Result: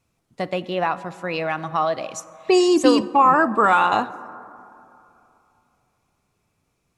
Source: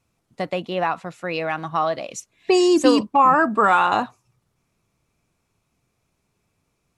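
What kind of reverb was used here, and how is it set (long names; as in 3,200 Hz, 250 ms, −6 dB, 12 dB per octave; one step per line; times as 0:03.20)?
dense smooth reverb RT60 2.9 s, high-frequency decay 0.3×, DRR 15.5 dB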